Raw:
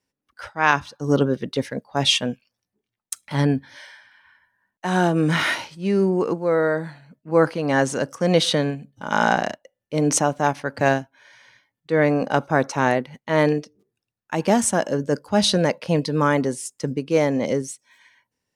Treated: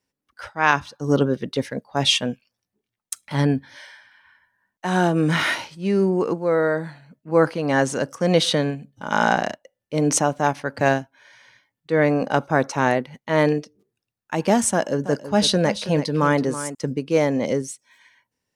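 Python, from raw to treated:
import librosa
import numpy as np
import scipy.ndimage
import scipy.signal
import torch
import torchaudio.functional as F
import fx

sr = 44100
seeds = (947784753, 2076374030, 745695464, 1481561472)

y = fx.echo_single(x, sr, ms=327, db=-12.0, at=(14.71, 16.75))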